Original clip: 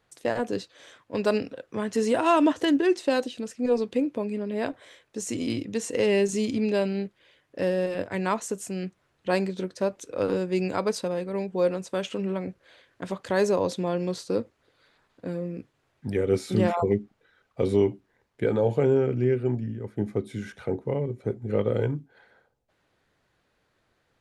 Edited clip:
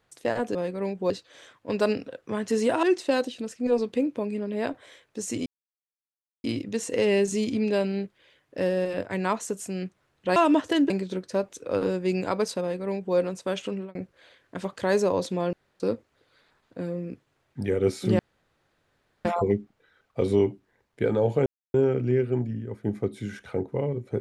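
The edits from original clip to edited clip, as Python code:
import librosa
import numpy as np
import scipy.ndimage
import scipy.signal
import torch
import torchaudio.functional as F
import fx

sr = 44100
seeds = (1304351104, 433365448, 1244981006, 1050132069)

y = fx.edit(x, sr, fx.move(start_s=2.28, length_s=0.54, to_s=9.37),
    fx.insert_silence(at_s=5.45, length_s=0.98),
    fx.duplicate(start_s=11.08, length_s=0.55, to_s=0.55),
    fx.fade_out_span(start_s=12.16, length_s=0.26),
    fx.room_tone_fill(start_s=14.0, length_s=0.27),
    fx.insert_room_tone(at_s=16.66, length_s=1.06),
    fx.insert_silence(at_s=18.87, length_s=0.28), tone=tone)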